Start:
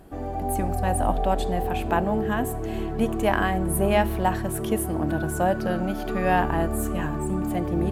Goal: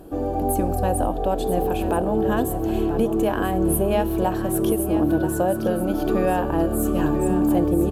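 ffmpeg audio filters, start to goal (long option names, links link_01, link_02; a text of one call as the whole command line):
ffmpeg -i in.wav -filter_complex "[0:a]equalizer=frequency=315:width_type=o:width=0.33:gain=9,equalizer=frequency=500:width_type=o:width=0.33:gain=9,equalizer=frequency=2000:width_type=o:width=0.33:gain=-11,equalizer=frequency=12500:width_type=o:width=0.33:gain=6,alimiter=limit=-14dB:level=0:latency=1:release=420,asplit=2[link_01][link_02];[link_02]aecho=0:1:984:0.316[link_03];[link_01][link_03]amix=inputs=2:normalize=0,volume=3dB" out.wav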